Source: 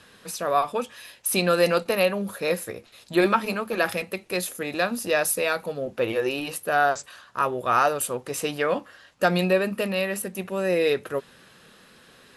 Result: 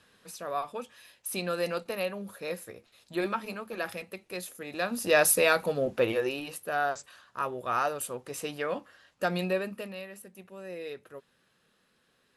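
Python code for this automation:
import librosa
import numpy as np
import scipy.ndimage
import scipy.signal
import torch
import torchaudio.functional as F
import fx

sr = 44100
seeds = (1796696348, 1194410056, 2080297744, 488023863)

y = fx.gain(x, sr, db=fx.line((4.65, -10.5), (5.2, 1.5), (5.88, 1.5), (6.46, -8.0), (9.57, -8.0), (10.11, -17.5)))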